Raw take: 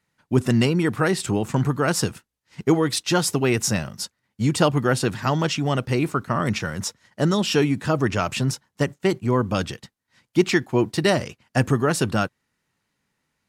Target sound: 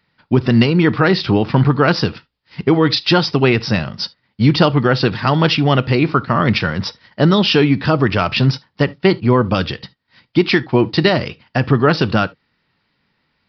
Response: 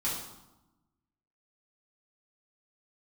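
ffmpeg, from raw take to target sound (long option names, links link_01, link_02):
-filter_complex "[0:a]highshelf=frequency=3700:gain=5.5,alimiter=limit=-10.5dB:level=0:latency=1:release=179,asplit=2[link_01][link_02];[1:a]atrim=start_sample=2205,atrim=end_sample=3528[link_03];[link_02][link_03]afir=irnorm=-1:irlink=0,volume=-21dB[link_04];[link_01][link_04]amix=inputs=2:normalize=0,aresample=11025,aresample=44100,volume=8dB"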